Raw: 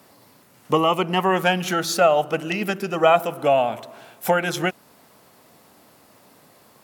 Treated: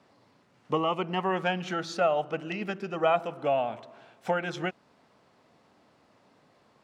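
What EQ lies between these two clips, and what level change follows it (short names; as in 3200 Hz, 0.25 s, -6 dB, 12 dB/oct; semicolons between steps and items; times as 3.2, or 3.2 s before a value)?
air absorption 120 m; -8.0 dB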